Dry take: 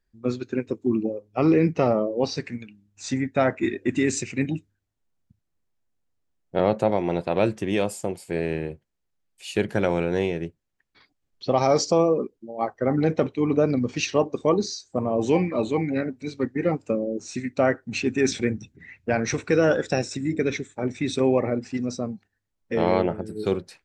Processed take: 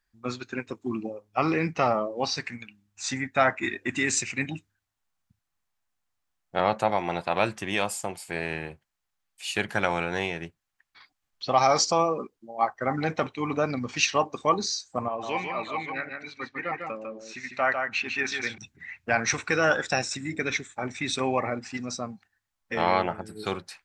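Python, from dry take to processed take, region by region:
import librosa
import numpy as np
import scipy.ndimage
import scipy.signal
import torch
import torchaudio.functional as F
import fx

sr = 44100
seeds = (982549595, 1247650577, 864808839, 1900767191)

y = fx.chain(x, sr, fx.lowpass(hz=3300.0, slope=12),
    fx.low_shelf(hz=480.0, db=-12.0),
    fx.echo_single(ms=150, db=-5.0), at=(15.08, 18.58))
y = fx.low_shelf_res(y, sr, hz=650.0, db=-10.0, q=1.5)
y = fx.notch(y, sr, hz=940.0, q=19.0)
y = y * librosa.db_to_amplitude(3.5)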